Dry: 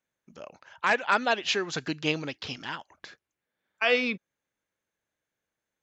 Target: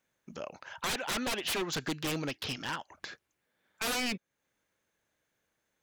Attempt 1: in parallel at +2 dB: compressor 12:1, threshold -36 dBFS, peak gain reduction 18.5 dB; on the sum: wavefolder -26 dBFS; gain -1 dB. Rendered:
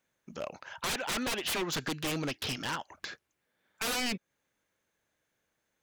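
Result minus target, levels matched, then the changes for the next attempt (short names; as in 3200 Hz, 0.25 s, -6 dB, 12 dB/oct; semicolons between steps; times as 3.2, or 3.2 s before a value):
compressor: peak gain reduction -9 dB
change: compressor 12:1, threshold -46 dBFS, peak gain reduction 27.5 dB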